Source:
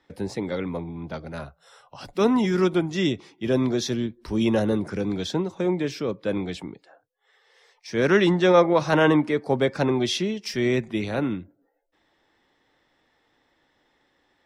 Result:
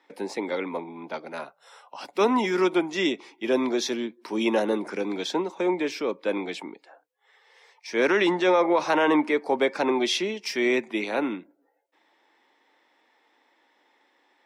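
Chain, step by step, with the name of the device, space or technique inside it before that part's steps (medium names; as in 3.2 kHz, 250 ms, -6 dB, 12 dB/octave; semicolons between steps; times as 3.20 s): laptop speaker (high-pass 260 Hz 24 dB/octave; peaking EQ 920 Hz +6.5 dB 0.44 oct; peaking EQ 2.3 kHz +6 dB 0.42 oct; peak limiter -12 dBFS, peak gain reduction 7.5 dB)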